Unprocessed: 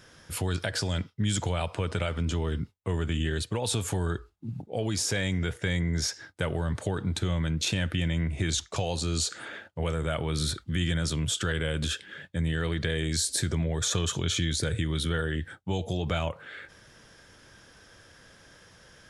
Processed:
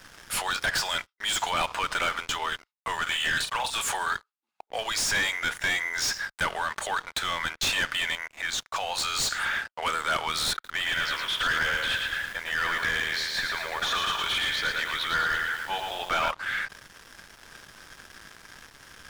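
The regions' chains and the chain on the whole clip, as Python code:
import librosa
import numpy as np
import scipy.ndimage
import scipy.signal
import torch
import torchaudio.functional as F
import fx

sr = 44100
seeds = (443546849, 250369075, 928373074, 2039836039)

y = fx.chain(x, sr, fx.highpass(hz=620.0, slope=12),
    fx.over_compress(threshold_db=-36.0, ratio=-0.5),
    fx.doubler(ms=42.0, db=-9.0), at=(3.02, 3.82))
y = fx.chain(y, sr, fx.highpass(hz=590.0, slope=6),
    fx.high_shelf(hz=2000.0, db=-11.5), at=(8.15, 8.95))
y = fx.chain(y, sr, fx.air_absorb(metres=280.0),
    fx.hum_notches(base_hz=60, count=3),
    fx.echo_crushed(ms=112, feedback_pct=55, bits=9, wet_db=-4.5), at=(10.53, 16.31))
y = scipy.signal.sosfilt(scipy.signal.butter(4, 950.0, 'highpass', fs=sr, output='sos'), y)
y = fx.leveller(y, sr, passes=5)
y = fx.tilt_eq(y, sr, slope=-2.0)
y = y * librosa.db_to_amplitude(-2.0)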